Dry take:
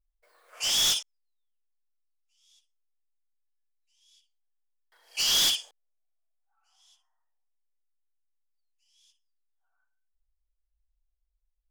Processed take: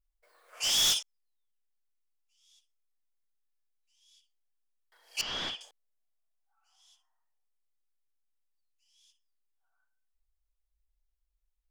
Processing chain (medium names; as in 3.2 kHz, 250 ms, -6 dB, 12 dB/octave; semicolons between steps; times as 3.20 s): 5.21–5.61 s: low-pass 1.9 kHz 12 dB/octave; trim -1.5 dB